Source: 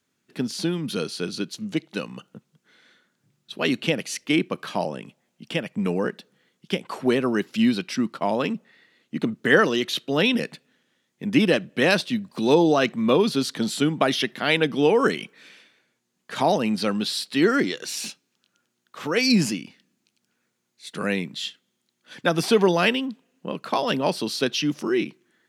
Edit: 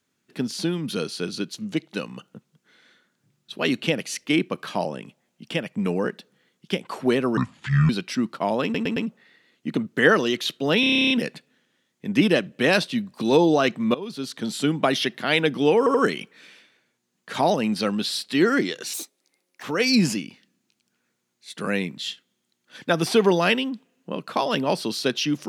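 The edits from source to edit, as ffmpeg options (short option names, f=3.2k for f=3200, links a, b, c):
-filter_complex "[0:a]asplit=21[a][b][c][d][e][f][g][h][i][j][k][l][m][n][o][p][q][r][s][t][u];[a]atrim=end=7.374[v];[b]atrim=start=7.37:end=7.7,asetpts=PTS-STARTPTS,asetrate=27783,aresample=44100[w];[c]atrim=start=7.696:end=8.552[x];[d]atrim=start=8.438:end=8.552[y];[e]atrim=start=8.438:end=8.552[z];[f]atrim=start=8.438:end=10.312[aa];[g]atrim=start=10.278:end=10.312[ab];[h]atrim=start=10.278:end=10.312[ac];[i]atrim=start=10.278:end=10.312[ad];[j]atrim=start=10.278:end=10.312[ae];[k]atrim=start=10.278:end=10.312[af];[l]atrim=start=10.278:end=10.312[ag];[m]atrim=start=10.278:end=10.312[ah];[n]atrim=start=10.278:end=10.312[ai];[o]atrim=start=10.278:end=10.312[aj];[p]atrim=start=10.278:end=13.12,asetpts=PTS-STARTPTS,afade=t=out:st=2.838:d=0.004:c=hsin:silence=0.0944061[ak];[q]atrim=start=13.12:end=15.042,asetpts=PTS-STARTPTS,afade=t=in:d=0.79:silence=0.0944061[al];[r]atrim=start=14.958:end=15.042[am];[s]atrim=start=14.958:end=17.954[an];[t]atrim=start=17.95:end=19,asetpts=PTS-STARTPTS,asetrate=66150,aresample=44100[ao];[u]atrim=start=18.996[ap];[v][w]acrossfade=d=0.004:c1=hsin:c2=hsin[aq];[aq][x]acrossfade=d=0.004:c1=hsin:c2=hsin[ar];[ar][y]acrossfade=d=0.004:c1=hsin:c2=hsin[as];[as][z]acrossfade=d=0.004:c1=hsin:c2=hsin[at];[at][aa]acrossfade=d=0.004:c1=hsin:c2=hsin[au];[au][ab]acrossfade=d=0.004:c1=hsin:c2=hsin[av];[av][ac]acrossfade=d=0.004:c1=hsin:c2=hsin[aw];[aw][ad]acrossfade=d=0.004:c1=hsin:c2=hsin[ax];[ax][ae]acrossfade=d=0.004:c1=hsin:c2=hsin[ay];[ay][af]acrossfade=d=0.004:c1=hsin:c2=hsin[az];[az][ag]acrossfade=d=0.004:c1=hsin:c2=hsin[ba];[ba][ah]acrossfade=d=0.004:c1=hsin:c2=hsin[bb];[bb][ai]acrossfade=d=0.004:c1=hsin:c2=hsin[bc];[bc][aj]acrossfade=d=0.004:c1=hsin:c2=hsin[bd];[ak][al]concat=n=2:v=0:a=1[be];[bd][be]acrossfade=d=0.004:c1=hsin:c2=hsin[bf];[bf][am]acrossfade=d=0.004:c1=hsin:c2=hsin[bg];[bg][an]acrossfade=d=0.004:c1=hsin:c2=hsin[bh];[bh][ao]acrossfade=d=0.004:c1=hsin:c2=hsin[bi];[bi][ap]acrossfade=d=0.004:c1=hsin:c2=hsin"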